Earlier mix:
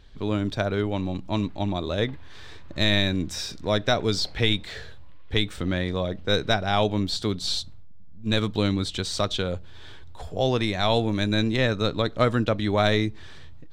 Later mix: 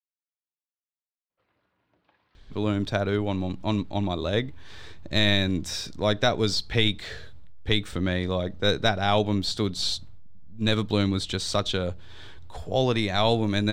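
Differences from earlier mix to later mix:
speech: entry +2.35 s; background -11.5 dB

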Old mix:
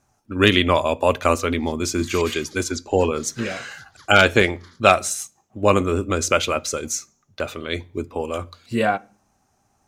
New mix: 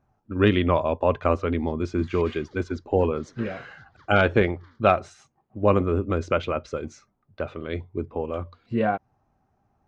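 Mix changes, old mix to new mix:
speech: send off; master: add tape spacing loss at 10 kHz 37 dB

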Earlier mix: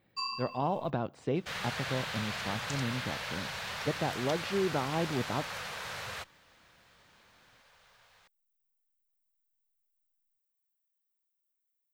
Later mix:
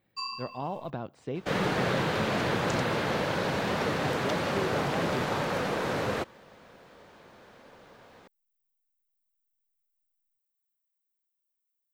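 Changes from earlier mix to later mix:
speech -3.5 dB; second sound: remove amplifier tone stack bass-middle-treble 10-0-10

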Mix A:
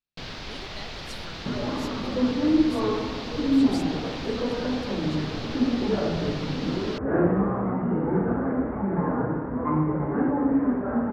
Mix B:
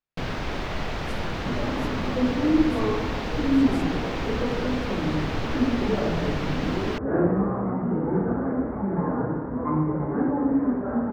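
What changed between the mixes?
first sound +9.5 dB; master: add peaking EQ 4.4 kHz -13 dB 1.4 oct

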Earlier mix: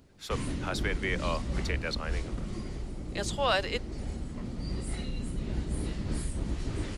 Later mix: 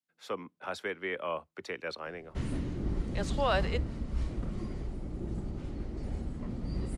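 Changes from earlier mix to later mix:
background: entry +2.05 s; master: add treble shelf 2.3 kHz -10 dB

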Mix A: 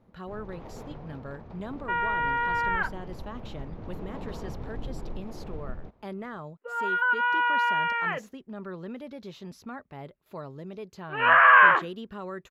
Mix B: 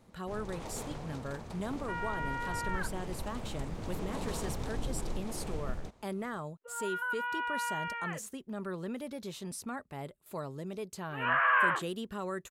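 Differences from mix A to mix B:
first sound: remove low-pass 1.2 kHz 6 dB/octave; second sound -11.0 dB; master: remove boxcar filter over 5 samples

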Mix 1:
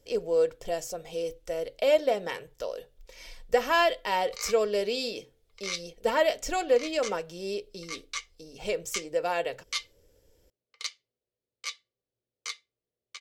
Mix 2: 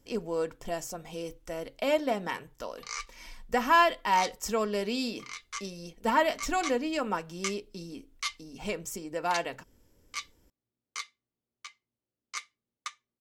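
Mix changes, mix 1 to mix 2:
background: entry -1.50 s; master: add graphic EQ 250/500/1000/4000 Hz +10/-11/+7/-4 dB

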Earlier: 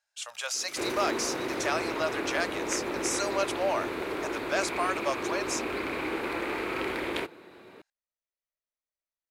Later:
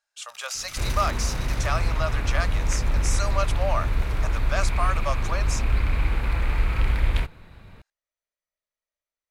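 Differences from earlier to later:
speech: add peaking EQ 1.2 kHz +8 dB 0.22 oct; first sound +6.5 dB; second sound: remove resonant high-pass 350 Hz, resonance Q 3.8

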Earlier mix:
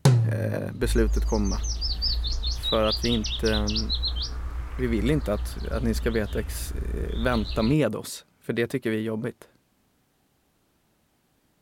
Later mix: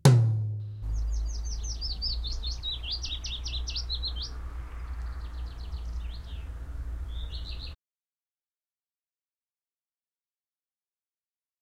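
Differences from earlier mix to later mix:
speech: muted; second sound -5.5 dB

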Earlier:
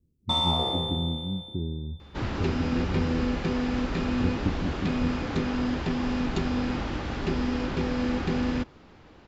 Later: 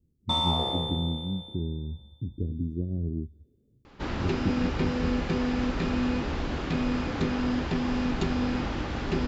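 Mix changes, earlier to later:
first sound: send -7.5 dB; second sound: entry +1.85 s

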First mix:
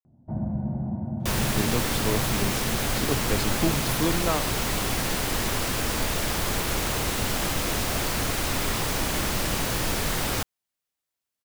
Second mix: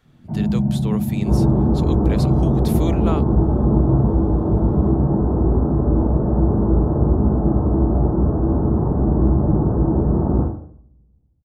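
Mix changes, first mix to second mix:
speech: entry -1.20 s; second sound: add Gaussian low-pass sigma 11 samples; reverb: on, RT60 0.60 s

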